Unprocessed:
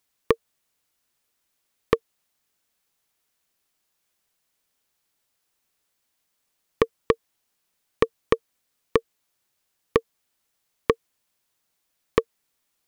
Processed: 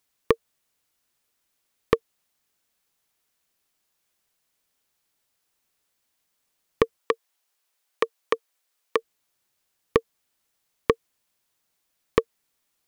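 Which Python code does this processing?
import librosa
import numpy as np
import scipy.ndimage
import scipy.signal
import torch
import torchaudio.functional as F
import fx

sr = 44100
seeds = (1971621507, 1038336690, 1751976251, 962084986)

y = fx.highpass(x, sr, hz=490.0, slope=12, at=(6.97, 8.97), fade=0.02)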